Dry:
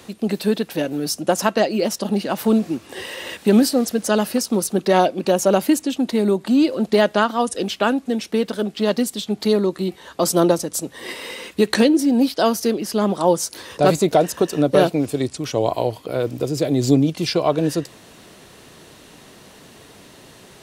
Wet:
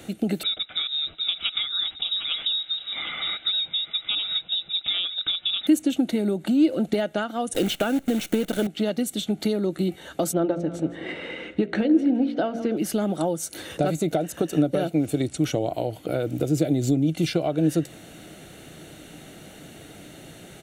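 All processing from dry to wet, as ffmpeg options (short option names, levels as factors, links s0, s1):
-filter_complex "[0:a]asettb=1/sr,asplit=3[s0][s1][s2];[s0]atrim=end=0.434[s3];[s1]atrim=start=0.43:end=5.67,asetpts=PTS-STARTPTS,afade=t=in:d=0.004:c=qsin,afade=t=out:st=5.236:d=0.004:c=qsin,lowpass=f=3400:t=q:w=0.5098,lowpass=f=3400:t=q:w=0.6013,lowpass=f=3400:t=q:w=0.9,lowpass=f=3400:t=q:w=2.563,afreqshift=-4000,aecho=1:1:753:0.237,atrim=end_sample=231084[s4];[s2]atrim=start=5.666[s5];[s3][s4]acrossfade=d=0.004:c1=hsin:c2=qsin[s6];[s6][s5]acrossfade=d=0.004:c1=qsin:c2=hsin,asettb=1/sr,asplit=3[s7][s8][s9];[s7]atrim=end=7.544[s10];[s8]atrim=start=7.54:end=8.67,asetpts=PTS-STARTPTS,afade=t=in:d=0.004:c=qsin,afade=t=out:st=1.126:d=0.004:c=qsin,acontrast=74,acrusher=bits=5:dc=4:mix=0:aa=0.000001[s11];[s9]atrim=start=8.666[s12];[s10][s11]acrossfade=d=0.004:c1=hsin:c2=qsin[s13];[s13][s12]acrossfade=d=0.004:c1=qsin:c2=hsin,asettb=1/sr,asplit=3[s14][s15][s16];[s14]atrim=end=10.334[s17];[s15]atrim=start=10.33:end=12.77,asetpts=PTS-STARTPTS,afade=t=in:d=0.004:c=qsin,afade=t=out:st=2.436:d=0.004:c=qsin,lowpass=2400,bandreject=f=57.6:t=h:w=4,bandreject=f=115.2:t=h:w=4,bandreject=f=172.8:t=h:w=4,bandreject=f=230.4:t=h:w=4,bandreject=f=288:t=h:w=4,bandreject=f=345.6:t=h:w=4,bandreject=f=403.2:t=h:w=4,bandreject=f=460.8:t=h:w=4,bandreject=f=518.4:t=h:w=4,bandreject=f=576:t=h:w=4,bandreject=f=633.6:t=h:w=4,bandreject=f=691.2:t=h:w=4,bandreject=f=748.8:t=h:w=4,aecho=1:1:162|324|486|648:0.106|0.0583|0.032|0.0176,atrim=end_sample=107604[s18];[s16]atrim=start=12.766[s19];[s17][s18]acrossfade=d=0.004:c1=hsin:c2=qsin[s20];[s20][s19]acrossfade=d=0.004:c1=qsin:c2=hsin,aecho=1:1:1.4:0.34,acompressor=threshold=0.0794:ratio=6,equalizer=f=160:t=o:w=0.33:g=5,equalizer=f=315:t=o:w=0.33:g=10,equalizer=f=1000:t=o:w=0.33:g=-11,equalizer=f=5000:t=o:w=0.33:g=-11"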